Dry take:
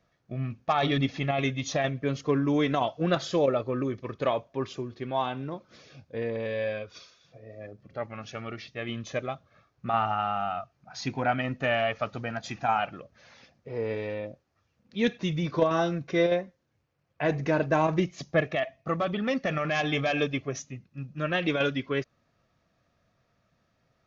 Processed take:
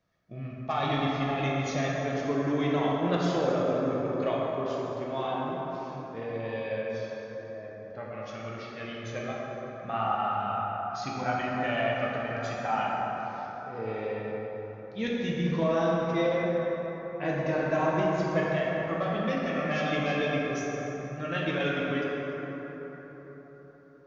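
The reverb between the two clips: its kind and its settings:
dense smooth reverb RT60 4.6 s, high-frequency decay 0.4×, DRR −5 dB
level −7 dB

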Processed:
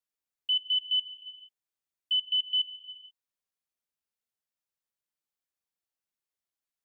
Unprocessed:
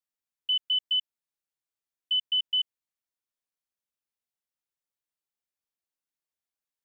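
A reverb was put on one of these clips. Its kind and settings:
reverb whose tail is shaped and stops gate 500 ms flat, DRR 10.5 dB
level −1.5 dB

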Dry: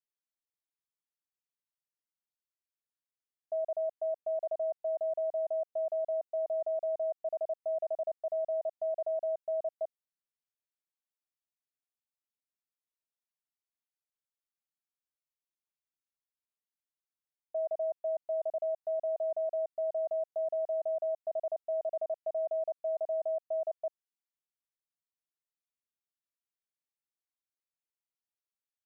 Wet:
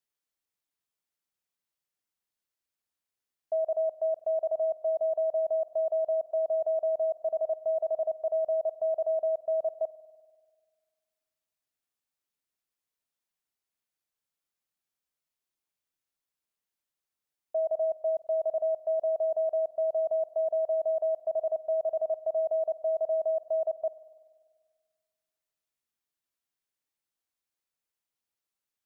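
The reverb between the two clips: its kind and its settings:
spring reverb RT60 1.7 s, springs 49 ms, chirp 55 ms, DRR 15 dB
level +5 dB

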